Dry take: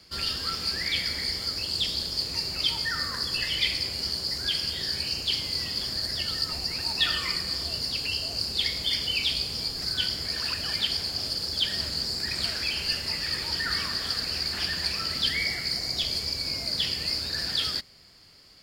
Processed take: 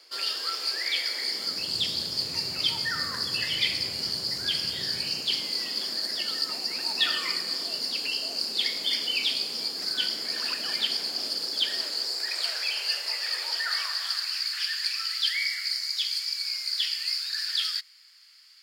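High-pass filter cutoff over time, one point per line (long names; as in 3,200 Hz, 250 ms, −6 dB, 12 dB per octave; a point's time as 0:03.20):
high-pass filter 24 dB per octave
0:01.16 380 Hz
0:01.75 100 Hz
0:04.91 100 Hz
0:05.59 230 Hz
0:11.38 230 Hz
0:12.48 500 Hz
0:13.51 500 Hz
0:14.58 1,400 Hz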